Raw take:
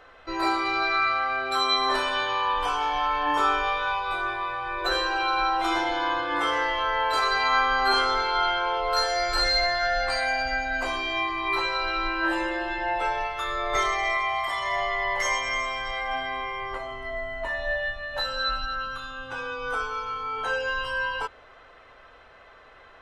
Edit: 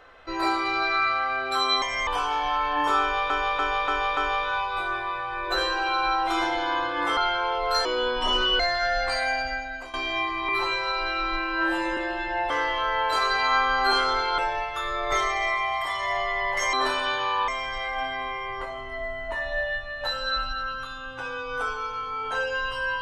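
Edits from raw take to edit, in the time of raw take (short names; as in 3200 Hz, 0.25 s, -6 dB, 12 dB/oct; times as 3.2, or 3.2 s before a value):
1.82–2.57 swap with 15.36–15.61
3.51–3.8 loop, 5 plays
6.51–8.39 move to 13.01
9.07–9.6 speed 71%
10.33–10.94 fade out, to -15.5 dB
11.49–12.48 stretch 1.5×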